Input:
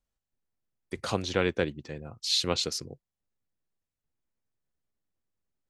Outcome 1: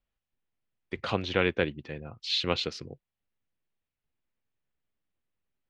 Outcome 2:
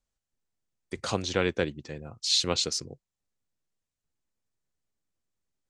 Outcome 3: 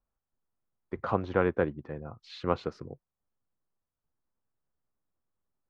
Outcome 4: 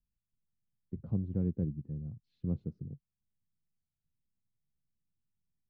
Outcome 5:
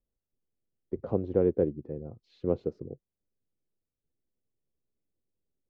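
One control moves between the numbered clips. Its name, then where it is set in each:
resonant low-pass, frequency: 2.9 kHz, 7.7 kHz, 1.2 kHz, 170 Hz, 450 Hz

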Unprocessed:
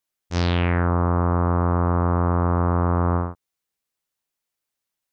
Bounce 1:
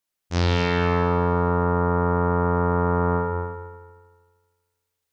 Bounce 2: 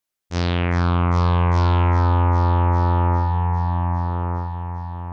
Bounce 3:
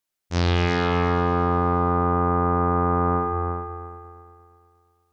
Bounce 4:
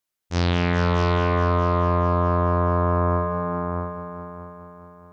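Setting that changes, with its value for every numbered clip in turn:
multi-head delay, time: 78 ms, 402 ms, 117 ms, 211 ms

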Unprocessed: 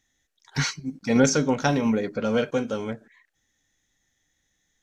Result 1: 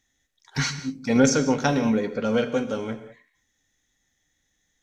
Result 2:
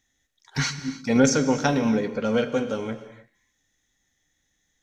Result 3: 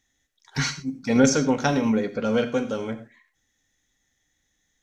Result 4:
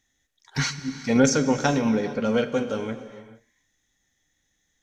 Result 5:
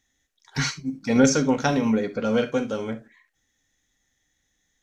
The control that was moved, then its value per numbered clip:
gated-style reverb, gate: 220 ms, 330 ms, 130 ms, 480 ms, 90 ms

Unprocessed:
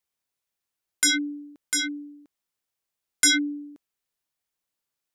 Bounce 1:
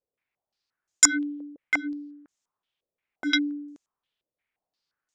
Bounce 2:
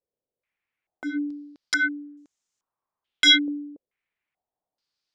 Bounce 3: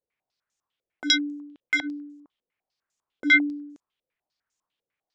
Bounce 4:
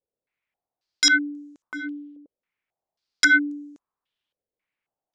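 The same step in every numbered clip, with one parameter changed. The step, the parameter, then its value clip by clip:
step-sequenced low-pass, rate: 5.7 Hz, 2.3 Hz, 10 Hz, 3.7 Hz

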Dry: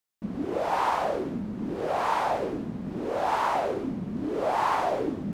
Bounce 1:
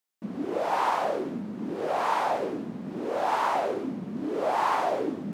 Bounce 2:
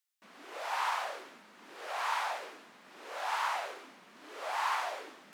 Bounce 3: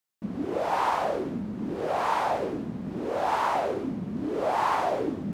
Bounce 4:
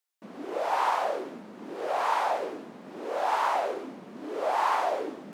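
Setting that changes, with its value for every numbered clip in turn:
high-pass, cutoff frequency: 180 Hz, 1.4 kHz, 52 Hz, 470 Hz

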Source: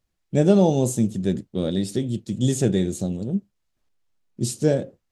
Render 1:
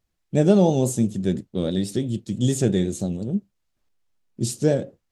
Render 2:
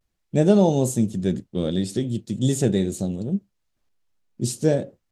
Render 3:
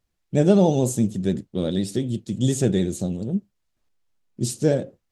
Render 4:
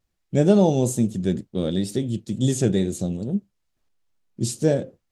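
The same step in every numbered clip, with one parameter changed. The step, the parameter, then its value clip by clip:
vibrato, rate: 6 Hz, 0.46 Hz, 14 Hz, 2.2 Hz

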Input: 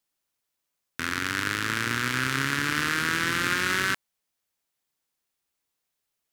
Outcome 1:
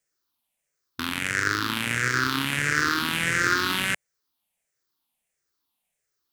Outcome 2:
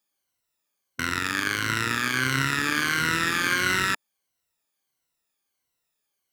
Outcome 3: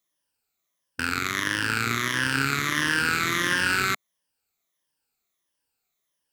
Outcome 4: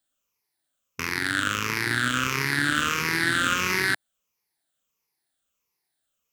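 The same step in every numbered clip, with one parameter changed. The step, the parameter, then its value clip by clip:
drifting ripple filter, ripples per octave: 0.52, 2, 1.2, 0.81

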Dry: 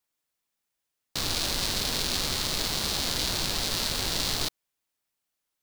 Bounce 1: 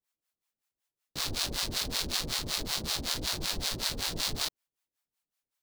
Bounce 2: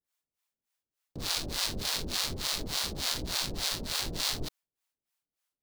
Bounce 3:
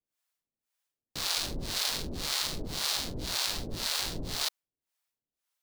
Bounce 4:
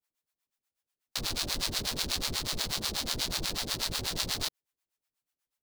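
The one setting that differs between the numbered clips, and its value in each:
harmonic tremolo, rate: 5.3 Hz, 3.4 Hz, 1.9 Hz, 8.2 Hz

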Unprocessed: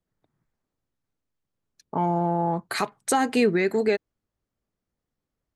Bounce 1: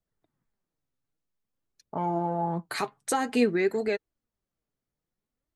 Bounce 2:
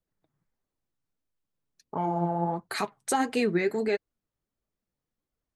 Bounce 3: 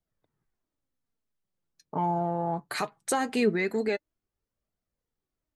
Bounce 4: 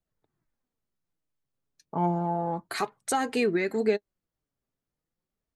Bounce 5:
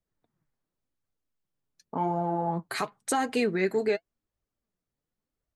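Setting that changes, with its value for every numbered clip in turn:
flange, rate: 0.52 Hz, 1.5 Hz, 0.21 Hz, 0.32 Hz, 0.91 Hz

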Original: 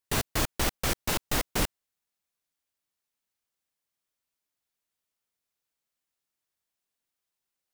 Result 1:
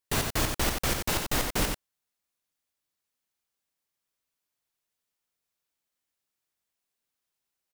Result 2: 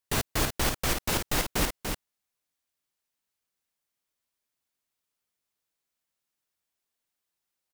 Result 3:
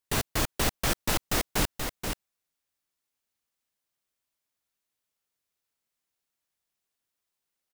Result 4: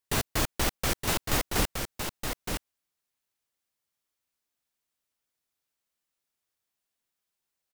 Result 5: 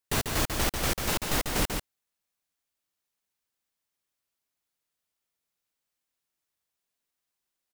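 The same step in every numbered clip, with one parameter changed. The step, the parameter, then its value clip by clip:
delay, time: 91 ms, 292 ms, 480 ms, 919 ms, 143 ms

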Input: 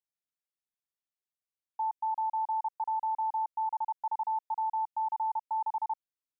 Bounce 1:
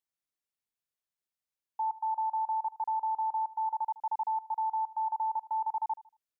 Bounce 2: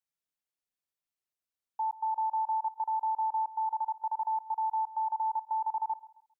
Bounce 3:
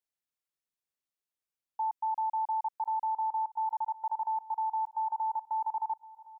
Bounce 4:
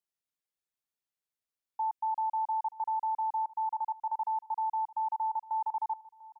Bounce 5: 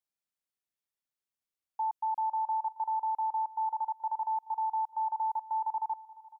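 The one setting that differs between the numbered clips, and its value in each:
feedback delay, time: 77 ms, 134 ms, 1065 ms, 695 ms, 427 ms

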